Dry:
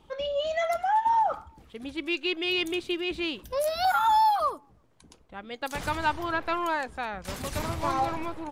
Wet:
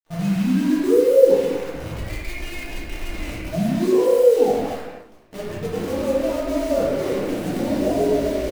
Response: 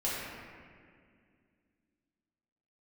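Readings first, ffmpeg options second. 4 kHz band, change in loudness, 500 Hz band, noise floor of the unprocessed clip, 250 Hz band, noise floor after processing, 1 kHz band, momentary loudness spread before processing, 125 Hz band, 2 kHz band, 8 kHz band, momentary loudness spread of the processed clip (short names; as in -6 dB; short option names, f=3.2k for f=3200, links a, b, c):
-4.0 dB, +7.5 dB, +14.0 dB, -59 dBFS, +13.5 dB, -42 dBFS, -8.5 dB, 14 LU, +12.5 dB, -2.5 dB, +6.0 dB, 17 LU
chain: -filter_complex "[0:a]aecho=1:1:230|460|690:0.141|0.0381|0.0103,afreqshift=-380,agate=range=-33dB:threshold=-48dB:ratio=3:detection=peak,lowshelf=f=110:g=-8,asplit=2[a][b];[b]acompressor=threshold=-34dB:ratio=6,volume=1.5dB[c];[a][c]amix=inputs=2:normalize=0,alimiter=limit=-18.5dB:level=0:latency=1:release=371,firequalizer=gain_entry='entry(100,0);entry(590,4);entry(940,-12);entry(4700,-17)':delay=0.05:min_phase=1,acrusher=bits=7:dc=4:mix=0:aa=0.000001[d];[1:a]atrim=start_sample=2205,afade=t=out:st=0.34:d=0.01,atrim=end_sample=15435[e];[d][e]afir=irnorm=-1:irlink=0"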